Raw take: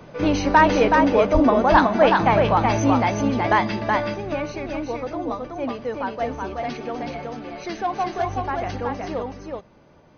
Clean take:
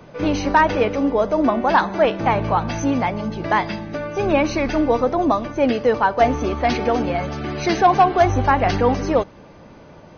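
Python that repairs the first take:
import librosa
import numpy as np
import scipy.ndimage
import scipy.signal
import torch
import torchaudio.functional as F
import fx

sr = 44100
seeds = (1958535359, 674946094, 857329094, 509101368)

y = fx.fix_deplosive(x, sr, at_s=(1.33,))
y = fx.fix_echo_inverse(y, sr, delay_ms=374, level_db=-3.5)
y = fx.gain(y, sr, db=fx.steps((0.0, 0.0), (4.14, 11.0)))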